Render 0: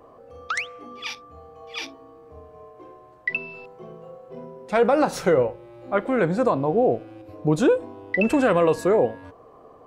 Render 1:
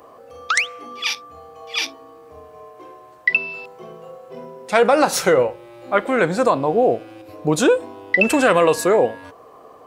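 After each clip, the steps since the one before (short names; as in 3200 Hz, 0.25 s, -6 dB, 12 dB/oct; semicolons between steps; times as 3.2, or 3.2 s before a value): tilt +2.5 dB/oct; gain +6 dB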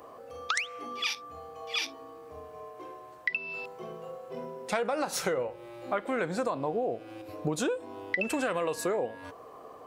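compressor 6:1, threshold -24 dBFS, peak gain reduction 13.5 dB; gain -3.5 dB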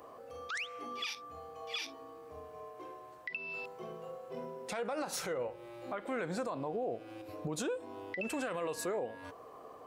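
limiter -24.5 dBFS, peak gain reduction 10.5 dB; gain -3.5 dB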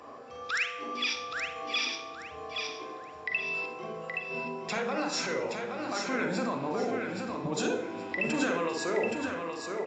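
feedback echo 0.822 s, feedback 28%, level -5 dB; reverb RT60 0.60 s, pre-delay 41 ms, DRR 4.5 dB; gain +5.5 dB; AAC 48 kbps 16000 Hz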